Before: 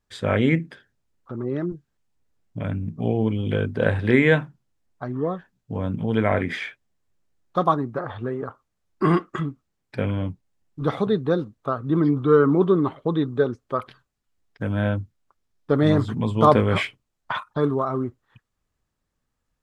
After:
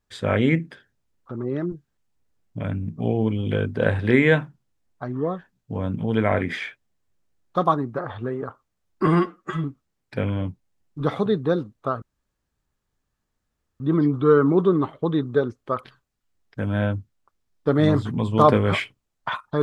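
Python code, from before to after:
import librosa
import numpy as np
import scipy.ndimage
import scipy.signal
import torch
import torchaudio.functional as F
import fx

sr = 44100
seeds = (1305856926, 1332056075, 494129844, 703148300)

y = fx.edit(x, sr, fx.stretch_span(start_s=9.07, length_s=0.38, factor=1.5),
    fx.insert_room_tone(at_s=11.83, length_s=1.78), tone=tone)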